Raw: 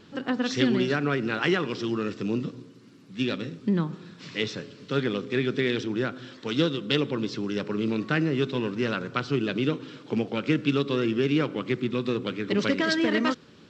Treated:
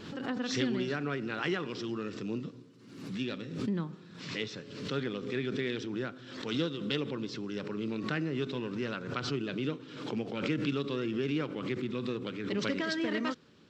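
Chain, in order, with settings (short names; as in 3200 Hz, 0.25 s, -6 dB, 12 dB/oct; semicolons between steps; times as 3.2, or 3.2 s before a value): backwards sustainer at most 61 dB/s; gain -8.5 dB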